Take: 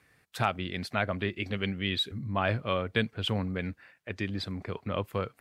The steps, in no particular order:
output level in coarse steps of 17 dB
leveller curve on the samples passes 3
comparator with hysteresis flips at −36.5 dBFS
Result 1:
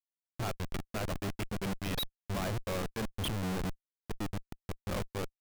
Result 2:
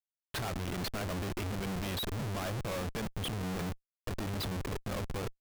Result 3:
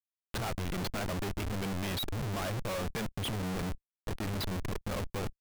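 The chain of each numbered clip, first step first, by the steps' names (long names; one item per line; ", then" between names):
output level in coarse steps, then comparator with hysteresis, then leveller curve on the samples
leveller curve on the samples, then output level in coarse steps, then comparator with hysteresis
comparator with hysteresis, then leveller curve on the samples, then output level in coarse steps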